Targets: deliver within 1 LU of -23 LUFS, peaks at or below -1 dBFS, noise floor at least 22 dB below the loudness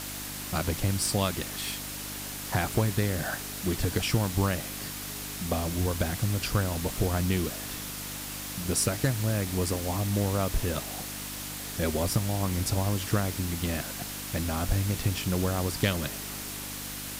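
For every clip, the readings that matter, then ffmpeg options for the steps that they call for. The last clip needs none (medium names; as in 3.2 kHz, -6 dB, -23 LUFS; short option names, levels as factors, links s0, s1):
hum 50 Hz; highest harmonic 300 Hz; hum level -42 dBFS; noise floor -38 dBFS; noise floor target -52 dBFS; loudness -29.5 LUFS; peak level -13.0 dBFS; loudness target -23.0 LUFS
-> -af "bandreject=f=50:t=h:w=4,bandreject=f=100:t=h:w=4,bandreject=f=150:t=h:w=4,bandreject=f=200:t=h:w=4,bandreject=f=250:t=h:w=4,bandreject=f=300:t=h:w=4"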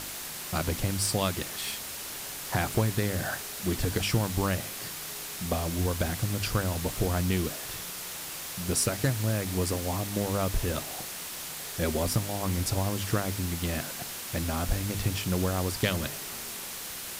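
hum not found; noise floor -39 dBFS; noise floor target -52 dBFS
-> -af "afftdn=nr=13:nf=-39"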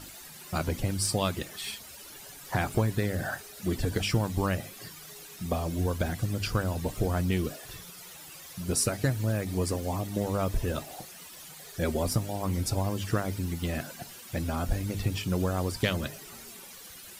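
noise floor -47 dBFS; noise floor target -53 dBFS
-> -af "afftdn=nr=6:nf=-47"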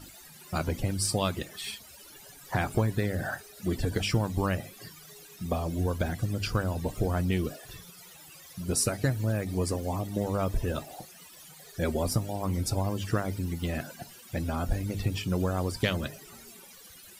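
noise floor -51 dBFS; noise floor target -53 dBFS
-> -af "afftdn=nr=6:nf=-51"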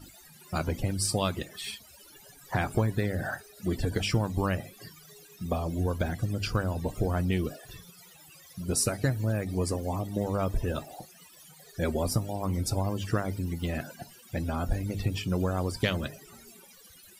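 noise floor -54 dBFS; loudness -31.0 LUFS; peak level -13.5 dBFS; loudness target -23.0 LUFS
-> -af "volume=2.51"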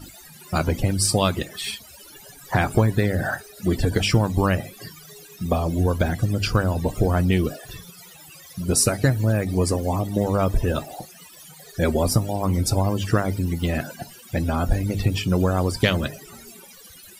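loudness -23.0 LUFS; peak level -5.5 dBFS; noise floor -46 dBFS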